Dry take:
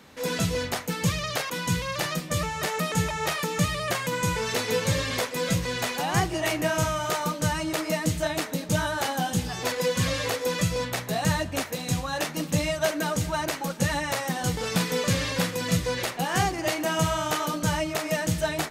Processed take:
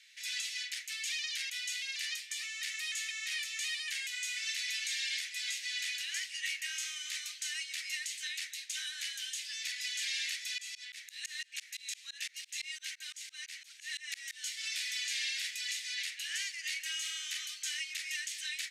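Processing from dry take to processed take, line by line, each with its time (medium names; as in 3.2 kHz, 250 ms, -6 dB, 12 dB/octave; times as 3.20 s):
10.58–14.43 s: tremolo saw up 5.9 Hz, depth 100%
whole clip: steep high-pass 1.9 kHz 48 dB/octave; peak limiter -23 dBFS; low-pass 8.5 kHz 12 dB/octave; trim -2 dB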